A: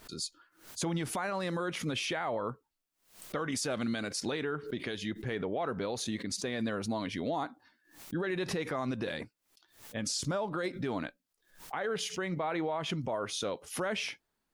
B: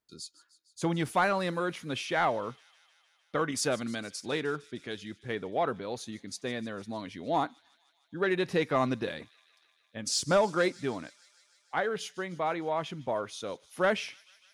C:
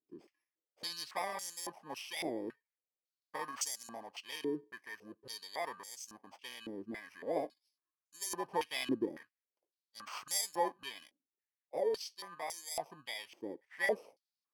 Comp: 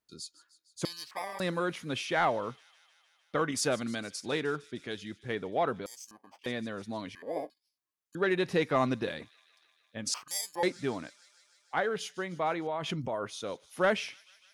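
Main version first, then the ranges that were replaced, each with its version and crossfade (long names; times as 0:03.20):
B
0:00.85–0:01.40: punch in from C
0:05.86–0:06.46: punch in from C
0:07.15–0:08.15: punch in from C
0:10.14–0:10.63: punch in from C
0:12.67–0:13.27: punch in from A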